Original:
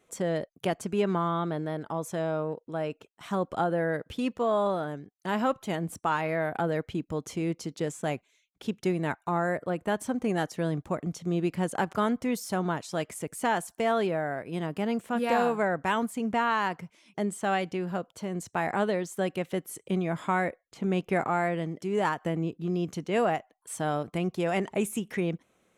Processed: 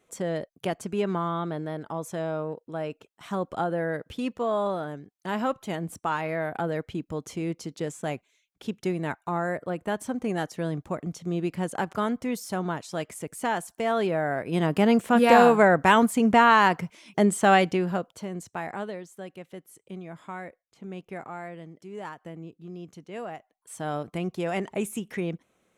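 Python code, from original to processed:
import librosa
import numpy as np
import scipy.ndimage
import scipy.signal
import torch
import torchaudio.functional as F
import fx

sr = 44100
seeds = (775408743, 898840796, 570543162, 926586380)

y = fx.gain(x, sr, db=fx.line((13.82, -0.5), (14.74, 9.0), (17.61, 9.0), (18.29, -1.0), (19.21, -11.0), (23.3, -11.0), (23.95, -1.0)))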